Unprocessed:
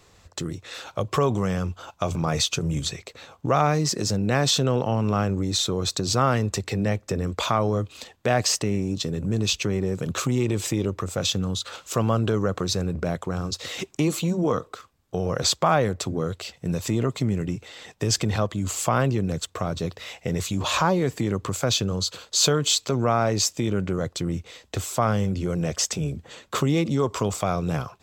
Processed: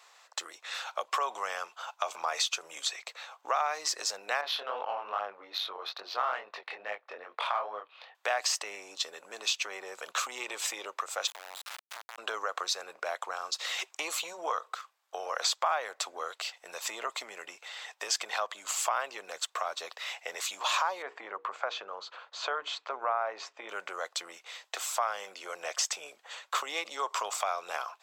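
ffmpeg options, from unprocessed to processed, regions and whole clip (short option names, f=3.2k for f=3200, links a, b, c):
-filter_complex "[0:a]asettb=1/sr,asplit=3[a][b][c];[a]atrim=end=4.414[d];[b]atrim=start=4.41:end=8.15,asetpts=PTS-STARTPTS,afade=t=in:d=0.004:c=qsin,afade=t=out:st=3.736:d=0.004:c=qsin,lowpass=f=4.5k:w=0.5412,lowpass=f=4.5k:w=1.3066,flanger=delay=19.5:depth=5.4:speed=2.4,adynamicsmooth=sensitivity=2:basefreq=2.8k[e];[c]atrim=start=8.146[f];[d][e]acrossfade=d=0.004:c1=hsin:c2=qsin[g];[g][f]acrossfade=d=0.004:c1=qsin:c2=hsin,asettb=1/sr,asplit=3[h][i][j];[h]atrim=end=11.274[k];[i]atrim=start=11.27:end=12.18,asetpts=PTS-STARTPTS,afade=t=in:d=0.004:c=qsin,afade=t=out:st=0.906:d=0.004:c=qsin,lowpass=f=4.2k:w=0.5412,lowpass=f=4.2k:w=1.3066,acompressor=threshold=-34dB:ratio=12:attack=3.2:release=140:knee=1:detection=peak,acrusher=bits=3:dc=4:mix=0:aa=0.000001[l];[j]atrim=start=12.176[m];[k][l]acrossfade=d=0.004:c1=hsin:c2=qsin[n];[n][m]acrossfade=d=0.004:c1=qsin:c2=hsin,asettb=1/sr,asplit=3[o][p][q];[o]atrim=end=21.024[r];[p]atrim=start=21.02:end=23.69,asetpts=PTS-STARTPTS,afade=t=in:d=0.004:c=qsin,afade=t=out:st=2.666:d=0.004:c=qsin,lowpass=1.7k,bandreject=f=60:t=h:w=6,bandreject=f=120:t=h:w=6,bandreject=f=180:t=h:w=6,bandreject=f=240:t=h:w=6,bandreject=f=300:t=h:w=6,bandreject=f=360:t=h:w=6,bandreject=f=420:t=h:w=6,bandreject=f=480:t=h:w=6[s];[q]atrim=start=23.686[t];[r][s]acrossfade=d=0.004:c1=hsin:c2=qsin[u];[u][t]acrossfade=d=0.004:c1=qsin:c2=hsin,highpass=f=740:w=0.5412,highpass=f=740:w=1.3066,highshelf=f=4.4k:g=-5.5,acompressor=threshold=-30dB:ratio=2.5,volume=2dB"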